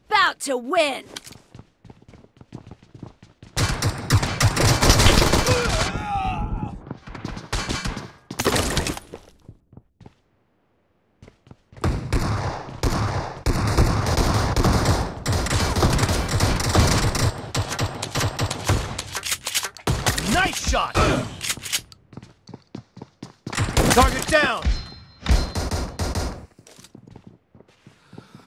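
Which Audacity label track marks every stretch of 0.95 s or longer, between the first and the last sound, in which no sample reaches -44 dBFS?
10.080000	11.230000	silence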